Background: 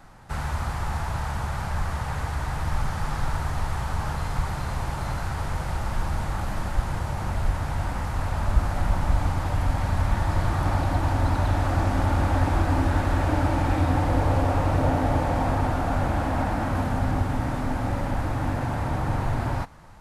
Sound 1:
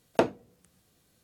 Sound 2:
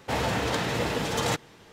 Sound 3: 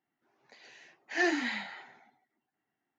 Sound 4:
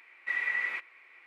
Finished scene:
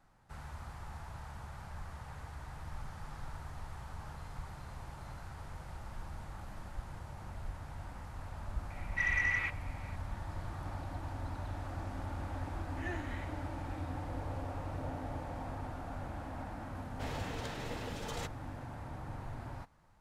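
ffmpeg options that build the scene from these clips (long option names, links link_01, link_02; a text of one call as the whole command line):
ffmpeg -i bed.wav -i cue0.wav -i cue1.wav -i cue2.wav -i cue3.wav -filter_complex "[0:a]volume=-18dB[link_01];[4:a]asoftclip=type=tanh:threshold=-22.5dB[link_02];[3:a]asuperstop=centerf=4900:order=4:qfactor=1.6[link_03];[link_02]atrim=end=1.26,asetpts=PTS-STARTPTS,afade=type=in:duration=0.004:curve=hsin,afade=type=out:start_time=1.256:duration=0.004:curve=hsin,adelay=8700[link_04];[link_03]atrim=end=2.98,asetpts=PTS-STARTPTS,volume=-14.5dB,afade=type=in:duration=0.004:curve=hsin,afade=type=out:start_time=2.976:duration=0.004:curve=hsin,adelay=11660[link_05];[2:a]atrim=end=1.72,asetpts=PTS-STARTPTS,volume=-15dB,afade=type=in:duration=0.004:curve=hsin,afade=type=out:start_time=1.716:duration=0.004:curve=hsin,adelay=16910[link_06];[link_01][link_04][link_05][link_06]amix=inputs=4:normalize=0" out.wav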